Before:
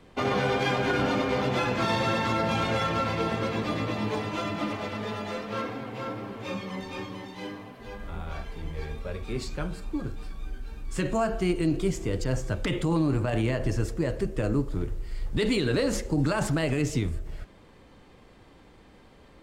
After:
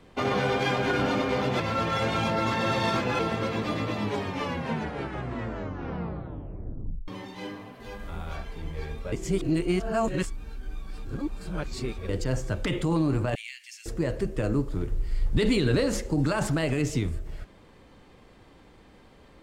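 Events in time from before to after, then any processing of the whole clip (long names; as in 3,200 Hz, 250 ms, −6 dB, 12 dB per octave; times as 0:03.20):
0:01.60–0:03.19: reverse
0:03.99: tape stop 3.09 s
0:07.80–0:08.36: high-shelf EQ 4,300 Hz +5 dB
0:09.12–0:12.09: reverse
0:13.35–0:13.86: elliptic high-pass filter 2,200 Hz, stop band 80 dB
0:14.92–0:15.84: low-shelf EQ 180 Hz +6.5 dB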